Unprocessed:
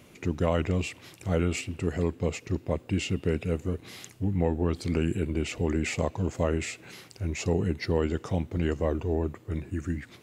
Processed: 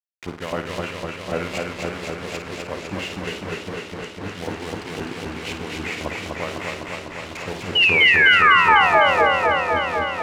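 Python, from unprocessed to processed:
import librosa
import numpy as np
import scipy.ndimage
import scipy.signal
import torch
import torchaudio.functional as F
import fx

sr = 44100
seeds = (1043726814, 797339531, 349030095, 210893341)

p1 = fx.delta_hold(x, sr, step_db=-31.5)
p2 = fx.low_shelf(p1, sr, hz=130.0, db=11.5)
p3 = fx.level_steps(p2, sr, step_db=10)
p4 = p2 + (p3 * 10.0 ** (1.0 / 20.0))
p5 = fx.spec_paint(p4, sr, seeds[0], shape='fall', start_s=7.75, length_s=1.5, low_hz=450.0, high_hz=3000.0, level_db=-17.0)
p6 = fx.filter_lfo_bandpass(p5, sr, shape='saw_up', hz=3.8, low_hz=950.0, high_hz=3900.0, q=0.93)
p7 = fx.room_flutter(p6, sr, wall_m=9.1, rt60_s=0.36)
p8 = fx.echo_warbled(p7, sr, ms=251, feedback_pct=78, rate_hz=2.8, cents=71, wet_db=-3.0)
y = p8 * 10.0 ** (2.5 / 20.0)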